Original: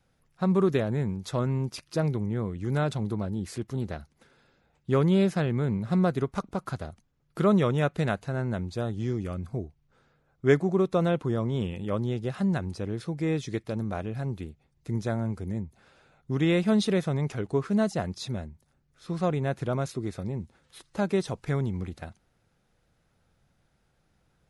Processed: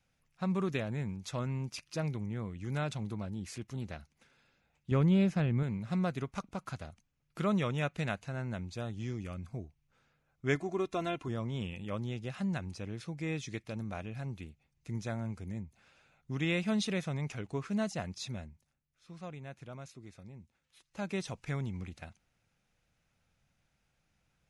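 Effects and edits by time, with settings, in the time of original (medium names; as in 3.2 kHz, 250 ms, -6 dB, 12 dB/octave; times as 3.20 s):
4.91–5.63 s: tilt EQ -2 dB/octave
10.55–11.28 s: comb 2.9 ms, depth 62%
18.44–21.23 s: dip -9.5 dB, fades 0.36 s equal-power
whole clip: fifteen-band graphic EQ 400 Hz -5 dB, 2.5 kHz +8 dB, 6.3 kHz +6 dB; trim -7.5 dB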